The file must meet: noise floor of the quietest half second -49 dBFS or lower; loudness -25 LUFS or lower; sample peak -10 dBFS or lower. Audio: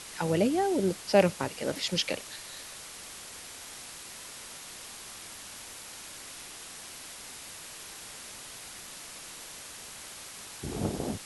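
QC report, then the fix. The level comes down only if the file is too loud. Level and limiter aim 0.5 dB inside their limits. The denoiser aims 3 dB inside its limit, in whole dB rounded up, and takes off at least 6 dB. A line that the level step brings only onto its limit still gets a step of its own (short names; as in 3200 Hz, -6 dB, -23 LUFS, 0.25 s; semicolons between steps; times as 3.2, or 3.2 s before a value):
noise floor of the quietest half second -45 dBFS: fail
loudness -34.0 LUFS: OK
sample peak -8.5 dBFS: fail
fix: denoiser 7 dB, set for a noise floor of -45 dBFS; limiter -10.5 dBFS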